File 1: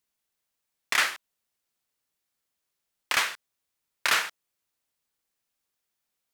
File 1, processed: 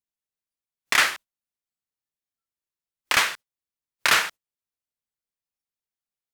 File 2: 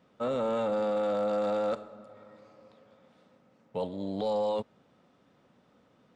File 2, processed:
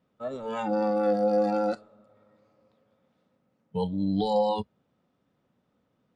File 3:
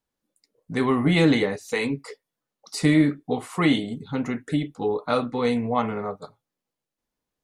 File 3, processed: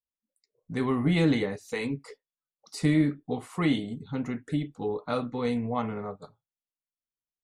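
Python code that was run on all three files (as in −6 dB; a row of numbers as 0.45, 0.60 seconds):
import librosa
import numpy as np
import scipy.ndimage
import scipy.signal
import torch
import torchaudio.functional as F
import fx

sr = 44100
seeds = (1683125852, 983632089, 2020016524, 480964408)

y = fx.low_shelf(x, sr, hz=210.0, db=7.0)
y = fx.noise_reduce_blind(y, sr, reduce_db=18)
y = y * 10.0 ** (-30 / 20.0) / np.sqrt(np.mean(np.square(y)))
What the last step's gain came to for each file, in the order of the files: +4.5, +7.5, −7.5 decibels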